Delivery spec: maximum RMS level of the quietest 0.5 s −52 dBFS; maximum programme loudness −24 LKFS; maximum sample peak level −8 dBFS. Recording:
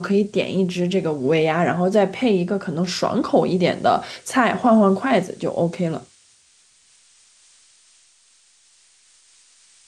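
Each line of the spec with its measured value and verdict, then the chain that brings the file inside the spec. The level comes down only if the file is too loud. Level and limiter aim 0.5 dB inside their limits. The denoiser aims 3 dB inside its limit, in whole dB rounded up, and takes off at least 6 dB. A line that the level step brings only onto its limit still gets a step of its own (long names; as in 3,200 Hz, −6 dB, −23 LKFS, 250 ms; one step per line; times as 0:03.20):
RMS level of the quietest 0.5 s −57 dBFS: in spec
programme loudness −20.0 LKFS: out of spec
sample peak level −5.0 dBFS: out of spec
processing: level −4.5 dB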